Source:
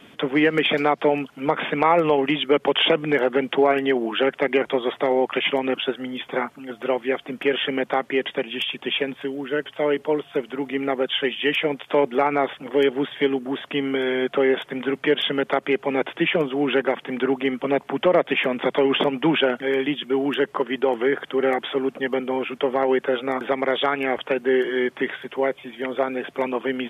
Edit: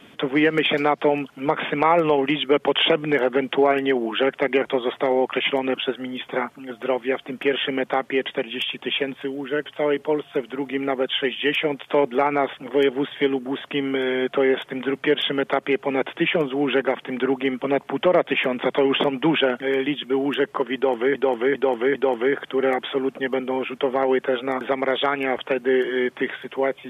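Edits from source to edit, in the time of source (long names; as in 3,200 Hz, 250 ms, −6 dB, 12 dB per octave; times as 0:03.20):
0:20.75–0:21.15: repeat, 4 plays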